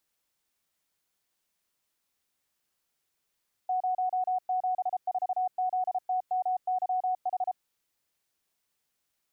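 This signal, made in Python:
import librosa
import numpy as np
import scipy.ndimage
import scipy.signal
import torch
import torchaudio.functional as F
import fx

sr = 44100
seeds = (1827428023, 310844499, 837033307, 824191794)

y = fx.morse(sr, text='074ZTMYH', wpm=33, hz=739.0, level_db=-25.0)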